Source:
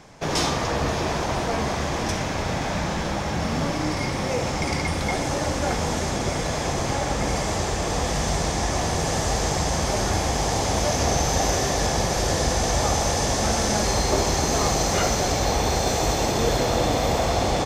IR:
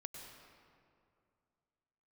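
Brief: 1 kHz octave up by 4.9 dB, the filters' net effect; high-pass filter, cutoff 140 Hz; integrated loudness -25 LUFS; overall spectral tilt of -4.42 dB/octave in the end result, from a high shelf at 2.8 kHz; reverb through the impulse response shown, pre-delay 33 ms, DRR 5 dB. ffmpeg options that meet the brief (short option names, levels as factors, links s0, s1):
-filter_complex "[0:a]highpass=140,equalizer=f=1000:t=o:g=7.5,highshelf=f=2800:g=-8,asplit=2[s0][s1];[1:a]atrim=start_sample=2205,adelay=33[s2];[s1][s2]afir=irnorm=-1:irlink=0,volume=0.841[s3];[s0][s3]amix=inputs=2:normalize=0,volume=0.708"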